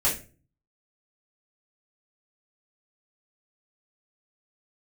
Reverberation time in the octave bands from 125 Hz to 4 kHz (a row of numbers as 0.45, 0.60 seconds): 0.70, 0.55, 0.40, 0.30, 0.35, 0.25 seconds